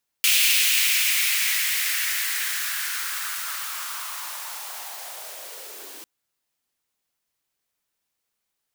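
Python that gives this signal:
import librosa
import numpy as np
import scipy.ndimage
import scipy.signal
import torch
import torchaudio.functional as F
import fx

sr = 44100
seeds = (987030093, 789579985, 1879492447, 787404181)

y = fx.riser_noise(sr, seeds[0], length_s=5.8, colour='white', kind='highpass', start_hz=2600.0, end_hz=310.0, q=3.2, swell_db=-21.5, law='linear')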